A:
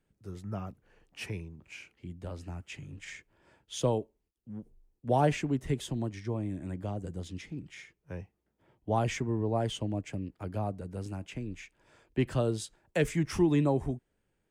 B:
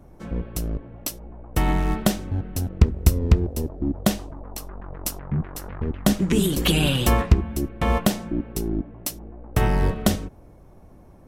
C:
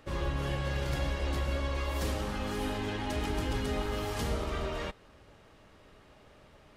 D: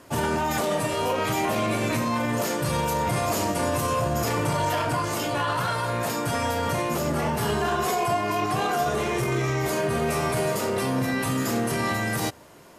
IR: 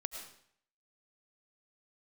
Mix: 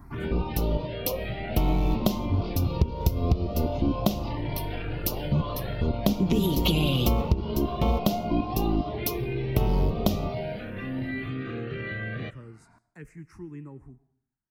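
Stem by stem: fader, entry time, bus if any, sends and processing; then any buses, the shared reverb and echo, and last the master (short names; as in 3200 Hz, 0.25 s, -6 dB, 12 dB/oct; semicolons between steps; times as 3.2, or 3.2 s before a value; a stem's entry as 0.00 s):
-15.0 dB, 0.00 s, send -9 dB, dry
+1.0 dB, 0.00 s, send -24 dB, high shelf 8000 Hz +11.5 dB
-3.0 dB, 1.00 s, no send, compressor 2.5:1, threshold -46 dBFS, peak gain reduction 12.5 dB
-2.0 dB, 0.00 s, send -12 dB, steep low-pass 4800 Hz 48 dB/oct; cascading flanger rising 0.45 Hz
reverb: on, RT60 0.65 s, pre-delay 65 ms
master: high shelf 4100 Hz -7 dB; envelope phaser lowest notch 490 Hz, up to 1700 Hz, full sweep at -22 dBFS; compressor 6:1, threshold -19 dBFS, peak gain reduction 12 dB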